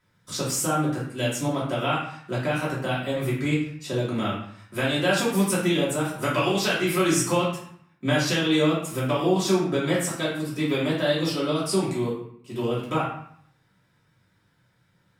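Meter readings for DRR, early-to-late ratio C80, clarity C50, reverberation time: −8.0 dB, 6.5 dB, 3.0 dB, 0.65 s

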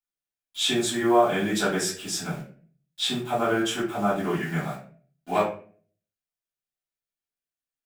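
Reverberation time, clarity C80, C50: 0.45 s, 10.5 dB, 6.0 dB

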